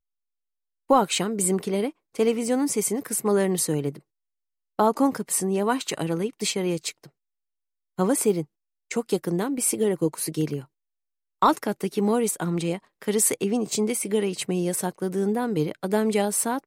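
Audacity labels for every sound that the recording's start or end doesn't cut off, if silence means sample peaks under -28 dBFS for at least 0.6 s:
0.900000	3.890000	sound
4.790000	6.900000	sound
7.990000	10.590000	sound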